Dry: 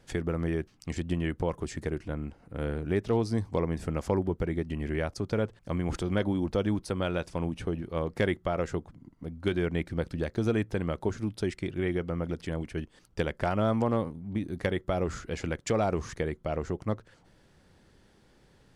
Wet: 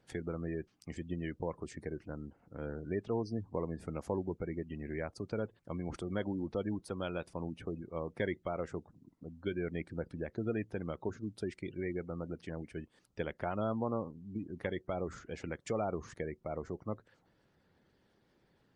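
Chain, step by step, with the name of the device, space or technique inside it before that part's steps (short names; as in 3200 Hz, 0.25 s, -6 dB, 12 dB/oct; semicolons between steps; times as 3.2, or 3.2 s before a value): noise-suppressed video call (HPF 120 Hz 6 dB/oct; spectral gate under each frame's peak -25 dB strong; gain -7 dB; Opus 32 kbps 48000 Hz)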